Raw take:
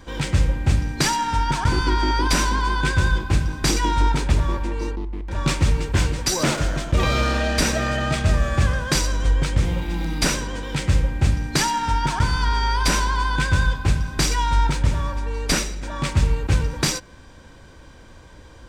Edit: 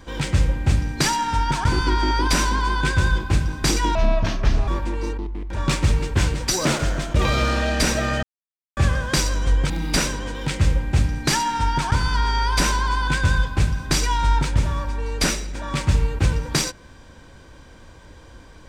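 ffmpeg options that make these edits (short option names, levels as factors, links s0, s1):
-filter_complex "[0:a]asplit=6[s0][s1][s2][s3][s4][s5];[s0]atrim=end=3.954[s6];[s1]atrim=start=3.95:end=4.46,asetpts=PTS-STARTPTS,asetrate=30870,aresample=44100,atrim=end_sample=32130,asetpts=PTS-STARTPTS[s7];[s2]atrim=start=4.456:end=8.01,asetpts=PTS-STARTPTS,afade=t=out:st=3.55:d=0.004:c=hsin[s8];[s3]atrim=start=8.01:end=8.55,asetpts=PTS-STARTPTS,volume=0[s9];[s4]atrim=start=8.55:end=9.482,asetpts=PTS-STARTPTS,afade=t=in:d=0.004:c=hsin[s10];[s5]atrim=start=9.978[s11];[s6][s7]acrossfade=d=0.004:c1=hsin:c2=hsin[s12];[s8][s9][s10]concat=n=3:v=0:a=1[s13];[s12][s13]acrossfade=d=0.004:c1=hsin:c2=hsin[s14];[s14][s11]acrossfade=d=0.004:c1=hsin:c2=hsin"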